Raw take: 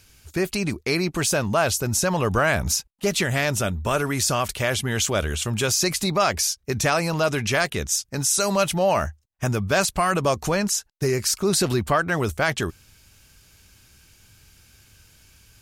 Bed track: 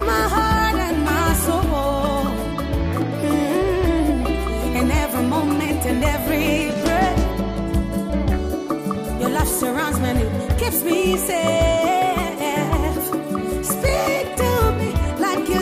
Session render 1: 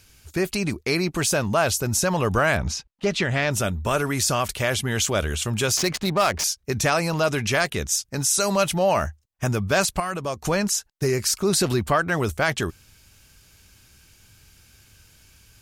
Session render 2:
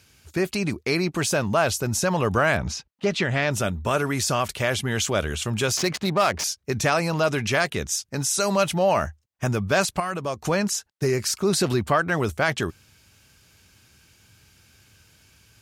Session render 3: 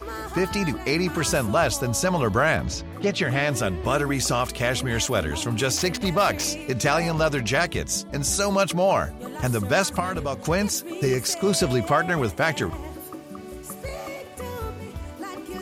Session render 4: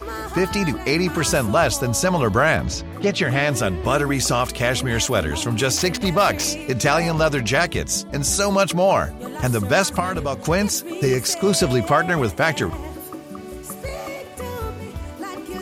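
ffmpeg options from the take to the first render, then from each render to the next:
-filter_complex "[0:a]asettb=1/sr,asplit=3[a][b][c];[a]atrim=end=2.574[d];[b]atrim=start=2.57:end=3.51,asetpts=PTS-STARTPTS,afade=t=in:d=0.004:c=qsin,afade=t=out:st=0.936:d=0.004:c=qsin,lowpass=4.5k[e];[c]atrim=start=3.506[f];[d][e]acrossfade=d=0.004:c1=hsin:c2=qsin[g];[g][f]acrossfade=d=0.004:c1=qsin:c2=hsin,asettb=1/sr,asplit=3[h][i][j];[h]atrim=end=5.774[k];[i]atrim=start=5.77:end=6.44,asetpts=PTS-STARTPTS,afade=t=in:d=0.004:c=qsin,afade=t=out:st=0.666:d=0.004:c=qsin,adynamicsmooth=sensitivity=4.5:basefreq=620[l];[j]atrim=start=6.436[m];[k][l]acrossfade=d=0.004:c1=hsin:c2=qsin[n];[n][m]acrossfade=d=0.004:c1=qsin:c2=hsin,asplit=3[o][p][q];[o]atrim=end=10.002[r];[p]atrim=start=9.998:end=10.452,asetpts=PTS-STARTPTS,volume=-7dB[s];[q]atrim=start=10.448[t];[r][s]acrossfade=d=0.004:c1=hsin:c2=hsin[u];[u][t]acrossfade=d=0.004:c1=hsin:c2=hsin"
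-af "highpass=81,highshelf=f=6.6k:g=-6"
-filter_complex "[1:a]volume=-15dB[a];[0:a][a]amix=inputs=2:normalize=0"
-af "volume=3.5dB"

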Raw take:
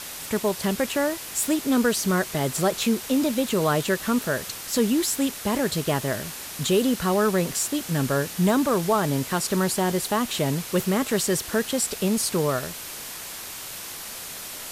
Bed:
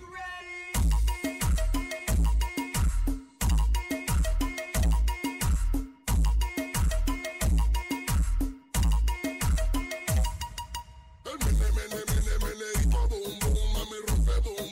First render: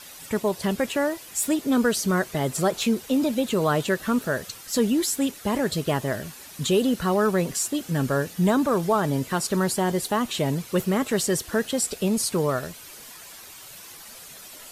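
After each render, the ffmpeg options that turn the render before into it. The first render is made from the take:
-af "afftdn=nr=10:nf=-37"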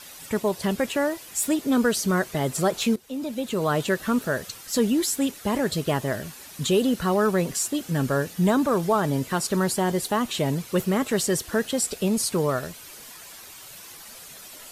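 -filter_complex "[0:a]asplit=2[a][b];[a]atrim=end=2.96,asetpts=PTS-STARTPTS,afade=t=out:st=2.956:d=0.004:c=hsin:silence=0.158489[c];[b]atrim=start=2.96,asetpts=PTS-STARTPTS,afade=t=in:d=0.89:silence=0.158489[d];[c][d]concat=n=2:v=0:a=1"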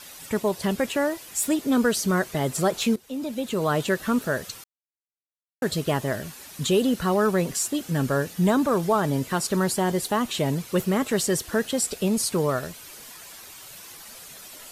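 -filter_complex "[0:a]asplit=3[a][b][c];[a]atrim=end=4.64,asetpts=PTS-STARTPTS,afade=t=out:st=4.636:d=0.004:c=hsin[d];[b]atrim=start=4.64:end=5.62,asetpts=PTS-STARTPTS,volume=0[e];[c]atrim=start=5.62,asetpts=PTS-STARTPTS,afade=t=in:d=0.004:c=hsin[f];[d][e][f]concat=n=3:v=0:a=1"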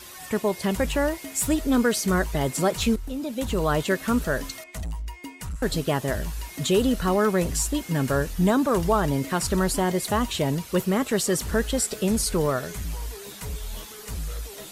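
-filter_complex "[1:a]volume=-7.5dB[a];[0:a][a]amix=inputs=2:normalize=0"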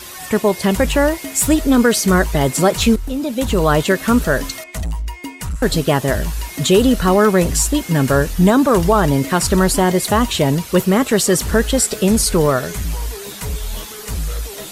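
-af "volume=9dB,alimiter=limit=-3dB:level=0:latency=1"

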